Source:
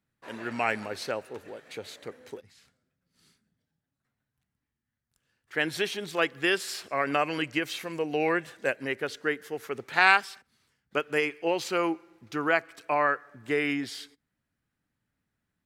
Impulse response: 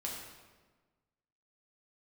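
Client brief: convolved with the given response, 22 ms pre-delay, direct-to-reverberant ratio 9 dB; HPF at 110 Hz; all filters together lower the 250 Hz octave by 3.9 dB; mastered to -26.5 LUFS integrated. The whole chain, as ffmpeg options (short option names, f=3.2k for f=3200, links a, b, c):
-filter_complex "[0:a]highpass=110,equalizer=f=250:t=o:g=-5.5,asplit=2[a][b];[1:a]atrim=start_sample=2205,adelay=22[c];[b][c]afir=irnorm=-1:irlink=0,volume=-10dB[d];[a][d]amix=inputs=2:normalize=0,volume=2dB"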